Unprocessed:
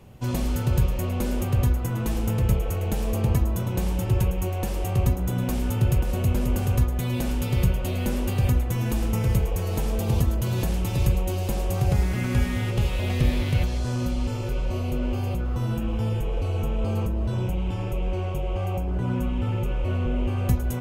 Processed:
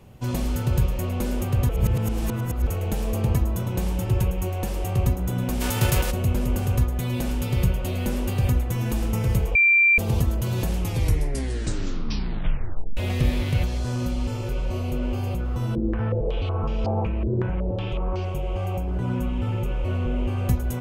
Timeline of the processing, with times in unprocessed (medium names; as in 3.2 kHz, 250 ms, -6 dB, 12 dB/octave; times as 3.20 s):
1.69–2.67 s: reverse
5.60–6.10 s: formants flattened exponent 0.6
9.55–9.98 s: bleep 2.36 kHz -13.5 dBFS
10.78 s: tape stop 2.19 s
15.75–18.25 s: step-sequenced low-pass 5.4 Hz 380–5100 Hz